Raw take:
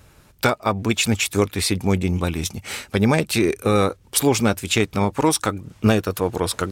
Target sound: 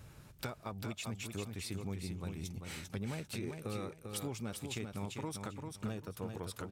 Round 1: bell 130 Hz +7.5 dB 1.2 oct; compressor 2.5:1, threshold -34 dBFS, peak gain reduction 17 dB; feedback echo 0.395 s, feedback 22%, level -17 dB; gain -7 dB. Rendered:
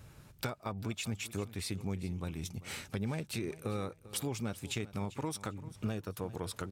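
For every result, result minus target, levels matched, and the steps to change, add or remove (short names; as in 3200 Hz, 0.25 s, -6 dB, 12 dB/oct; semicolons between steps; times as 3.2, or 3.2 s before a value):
echo-to-direct -11.5 dB; compressor: peak gain reduction -4 dB
change: feedback echo 0.395 s, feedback 22%, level -5.5 dB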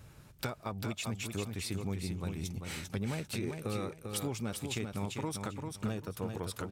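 compressor: peak gain reduction -4 dB
change: compressor 2.5:1, threshold -41 dBFS, peak gain reduction 21.5 dB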